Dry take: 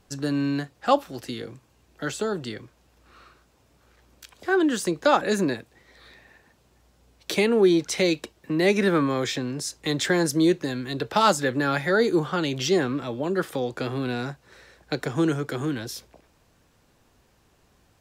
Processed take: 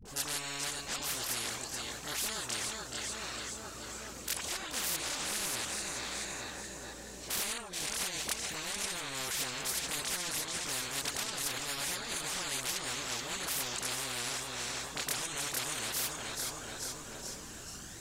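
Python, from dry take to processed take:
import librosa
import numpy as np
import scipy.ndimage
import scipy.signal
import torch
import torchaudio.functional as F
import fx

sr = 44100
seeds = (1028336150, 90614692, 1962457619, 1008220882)

y = fx.spec_steps(x, sr, hold_ms=100, at=(4.49, 7.5))
y = fx.peak_eq(y, sr, hz=7400.0, db=12.0, octaves=1.0)
y = fx.over_compress(y, sr, threshold_db=-25.0, ratio=-0.5)
y = fx.dispersion(y, sr, late='highs', ms=54.0, hz=510.0)
y = fx.chorus_voices(y, sr, voices=6, hz=0.44, base_ms=25, depth_ms=2.7, mix_pct=65)
y = fx.echo_feedback(y, sr, ms=429, feedback_pct=48, wet_db=-15.5)
y = fx.spectral_comp(y, sr, ratio=10.0)
y = F.gain(torch.from_numpy(y), -5.5).numpy()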